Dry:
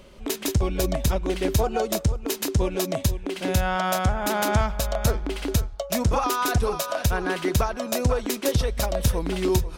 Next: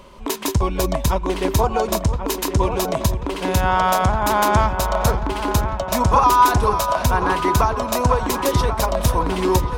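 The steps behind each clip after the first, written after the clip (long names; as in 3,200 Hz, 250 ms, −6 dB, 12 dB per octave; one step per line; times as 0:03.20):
parametric band 1,000 Hz +14 dB 0.37 octaves
on a send: delay with a low-pass on its return 1,086 ms, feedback 59%, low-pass 2,500 Hz, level −9 dB
on the sum: level +3 dB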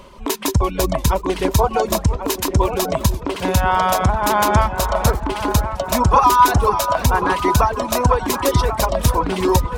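reverb reduction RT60 0.65 s
feedback echo with a swinging delay time 349 ms, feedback 53%, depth 205 cents, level −20 dB
level +2.5 dB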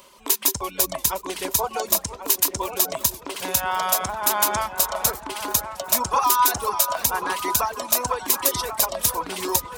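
RIAA equalisation recording
level −7.5 dB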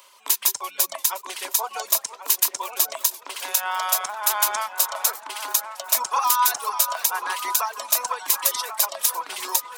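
high-pass filter 830 Hz 12 dB per octave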